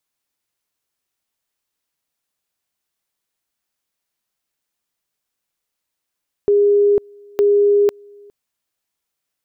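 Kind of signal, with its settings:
tone at two levels in turn 408 Hz −10 dBFS, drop 29.5 dB, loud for 0.50 s, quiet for 0.41 s, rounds 2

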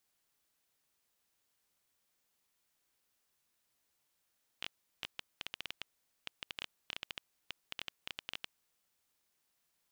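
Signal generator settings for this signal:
Geiger counter clicks 9.4 per second −21.5 dBFS 3.93 s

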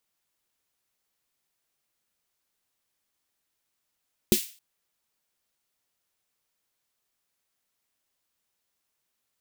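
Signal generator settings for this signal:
synth snare length 0.27 s, tones 220 Hz, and 360 Hz, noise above 2,400 Hz, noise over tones −6.5 dB, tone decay 0.09 s, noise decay 0.38 s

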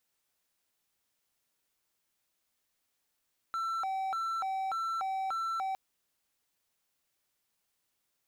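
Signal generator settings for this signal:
siren hi-lo 768–1,340 Hz 1.7 per second triangle −29 dBFS 2.21 s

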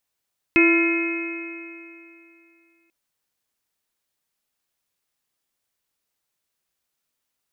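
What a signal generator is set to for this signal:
stiff-string partials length 2.34 s, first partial 333 Hz, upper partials −19/−19/−15/−16.5/−6/−1.5 dB, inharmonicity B 0.0039, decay 2.72 s, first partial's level −14 dB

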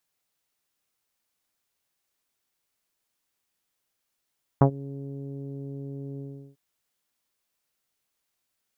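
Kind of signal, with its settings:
subtractive voice saw C#3 24 dB per octave, low-pass 420 Hz, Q 1.5, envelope 1.5 octaves, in 0.10 s, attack 3.5 ms, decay 0.09 s, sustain −23 dB, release 0.37 s, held 1.58 s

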